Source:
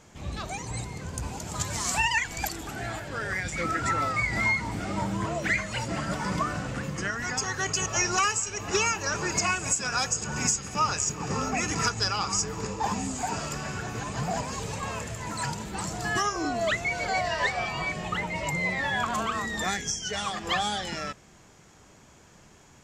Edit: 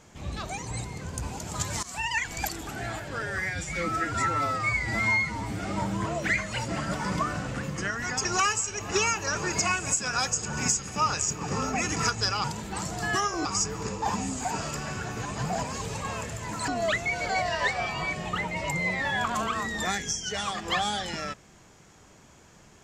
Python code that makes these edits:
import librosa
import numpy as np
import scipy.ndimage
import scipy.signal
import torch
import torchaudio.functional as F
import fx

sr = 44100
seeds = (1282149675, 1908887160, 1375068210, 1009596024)

y = fx.edit(x, sr, fx.fade_in_from(start_s=1.83, length_s=0.46, floor_db=-18.0),
    fx.stretch_span(start_s=3.22, length_s=1.6, factor=1.5),
    fx.cut(start_s=7.45, length_s=0.59),
    fx.move(start_s=15.46, length_s=1.01, to_s=12.23), tone=tone)